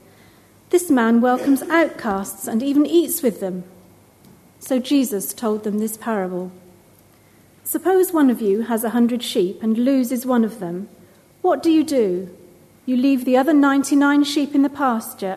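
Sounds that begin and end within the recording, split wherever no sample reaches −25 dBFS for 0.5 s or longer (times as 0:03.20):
0:00.72–0:03.61
0:04.66–0:06.48
0:07.66–0:10.84
0:11.44–0:12.25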